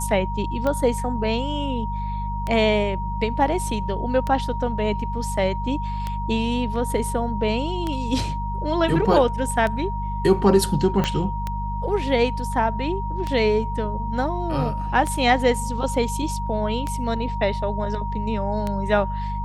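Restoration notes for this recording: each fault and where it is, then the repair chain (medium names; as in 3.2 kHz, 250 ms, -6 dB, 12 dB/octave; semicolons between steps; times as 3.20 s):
hum 50 Hz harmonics 4 -28 dBFS
tick 33 1/3 rpm -13 dBFS
whine 940 Hz -29 dBFS
11.04 s: pop -9 dBFS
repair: de-click; band-stop 940 Hz, Q 30; de-hum 50 Hz, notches 4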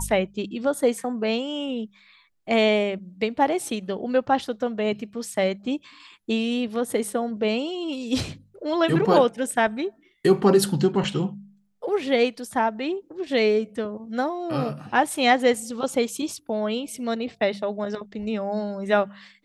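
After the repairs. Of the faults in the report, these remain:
11.04 s: pop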